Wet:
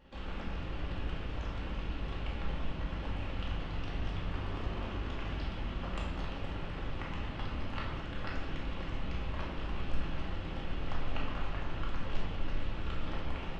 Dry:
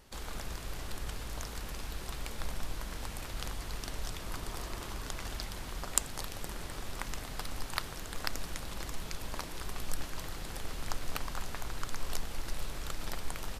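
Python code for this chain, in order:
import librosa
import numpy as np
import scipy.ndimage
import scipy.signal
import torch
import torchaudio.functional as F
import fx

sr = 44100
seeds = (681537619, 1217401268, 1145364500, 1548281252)

y = fx.highpass(x, sr, hz=42.0, slope=6)
y = fx.peak_eq(y, sr, hz=2900.0, db=10.0, octaves=0.54)
y = 10.0 ** (-17.5 / 20.0) * np.tanh(y / 10.0 ** (-17.5 / 20.0))
y = fx.spacing_loss(y, sr, db_at_10k=37)
y = fx.room_shoebox(y, sr, seeds[0], volume_m3=480.0, walls='mixed', distance_m=2.3)
y = F.gain(torch.from_numpy(y), -1.5).numpy()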